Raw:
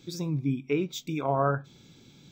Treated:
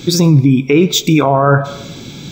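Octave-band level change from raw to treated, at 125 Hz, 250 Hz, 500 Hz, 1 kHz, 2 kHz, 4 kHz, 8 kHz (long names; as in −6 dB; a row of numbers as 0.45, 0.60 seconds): +19.0, +19.0, +16.0, +14.5, +18.0, +23.0, +23.5 decibels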